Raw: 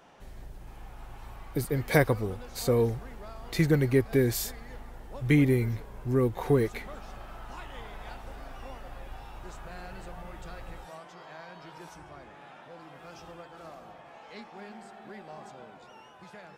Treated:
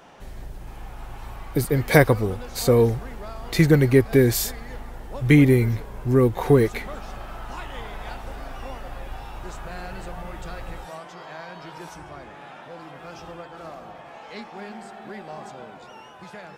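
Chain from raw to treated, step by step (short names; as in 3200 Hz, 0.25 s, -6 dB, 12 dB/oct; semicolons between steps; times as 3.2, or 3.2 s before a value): 12.91–13.95 high shelf 5300 Hz -4.5 dB; gain +7.5 dB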